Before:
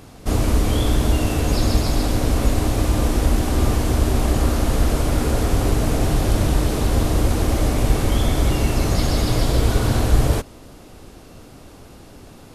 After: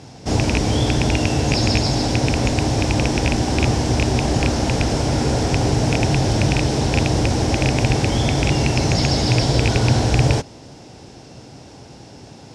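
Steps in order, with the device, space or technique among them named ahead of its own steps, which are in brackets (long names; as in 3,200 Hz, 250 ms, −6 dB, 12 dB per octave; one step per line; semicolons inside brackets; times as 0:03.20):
car door speaker with a rattle (loose part that buzzes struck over −12 dBFS, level −9 dBFS; loudspeaker in its box 82–8,100 Hz, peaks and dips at 130 Hz +7 dB, 840 Hz +5 dB, 1,200 Hz −8 dB, 5,400 Hz +9 dB)
level +2 dB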